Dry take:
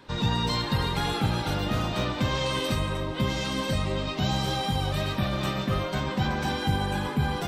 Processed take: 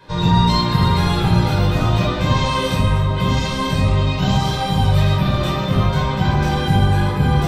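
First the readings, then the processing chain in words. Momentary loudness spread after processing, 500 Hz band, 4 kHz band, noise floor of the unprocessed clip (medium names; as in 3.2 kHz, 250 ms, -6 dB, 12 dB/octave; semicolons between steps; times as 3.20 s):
3 LU, +7.5 dB, +6.0 dB, -33 dBFS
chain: simulated room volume 730 m³, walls furnished, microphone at 5.1 m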